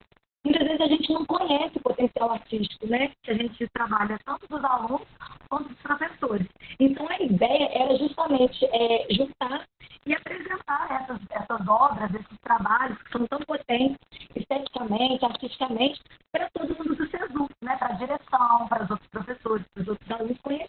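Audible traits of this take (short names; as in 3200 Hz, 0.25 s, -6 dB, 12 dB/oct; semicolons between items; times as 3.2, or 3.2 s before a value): chopped level 10 Hz, depth 65%, duty 70%; phasing stages 4, 0.15 Hz, lowest notch 430–1900 Hz; a quantiser's noise floor 8-bit, dither none; Opus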